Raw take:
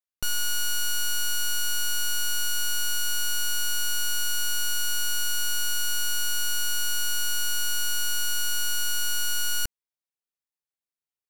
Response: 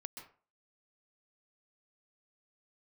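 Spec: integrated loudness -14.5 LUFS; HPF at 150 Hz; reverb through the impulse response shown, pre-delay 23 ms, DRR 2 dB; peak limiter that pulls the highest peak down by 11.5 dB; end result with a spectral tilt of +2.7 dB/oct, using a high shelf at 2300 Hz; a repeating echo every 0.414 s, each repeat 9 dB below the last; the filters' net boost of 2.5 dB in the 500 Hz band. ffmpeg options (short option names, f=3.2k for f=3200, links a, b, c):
-filter_complex "[0:a]highpass=150,equalizer=f=500:t=o:g=3,highshelf=f=2.3k:g=3.5,alimiter=level_in=1.5dB:limit=-24dB:level=0:latency=1,volume=-1.5dB,aecho=1:1:414|828|1242|1656:0.355|0.124|0.0435|0.0152,asplit=2[a][b];[1:a]atrim=start_sample=2205,adelay=23[c];[b][c]afir=irnorm=-1:irlink=0,volume=2dB[d];[a][d]amix=inputs=2:normalize=0,volume=18dB"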